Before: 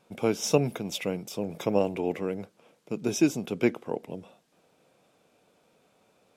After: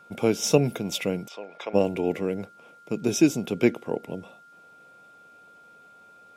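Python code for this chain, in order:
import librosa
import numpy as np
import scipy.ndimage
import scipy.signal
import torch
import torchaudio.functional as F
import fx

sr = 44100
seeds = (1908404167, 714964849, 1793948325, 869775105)

y = fx.dynamic_eq(x, sr, hz=1100.0, q=1.2, threshold_db=-43.0, ratio=4.0, max_db=-5)
y = y + 10.0 ** (-54.0 / 20.0) * np.sin(2.0 * np.pi * 1400.0 * np.arange(len(y)) / sr)
y = fx.bandpass_edges(y, sr, low_hz=760.0, high_hz=3300.0, at=(1.27, 1.73), fade=0.02)
y = y * 10.0 ** (4.0 / 20.0)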